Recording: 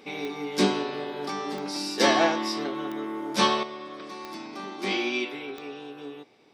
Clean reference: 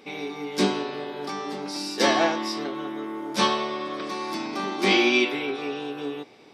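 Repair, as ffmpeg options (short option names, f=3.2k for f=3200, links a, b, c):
-af "adeclick=t=4,asetnsamples=n=441:p=0,asendcmd='3.63 volume volume 8dB',volume=0dB"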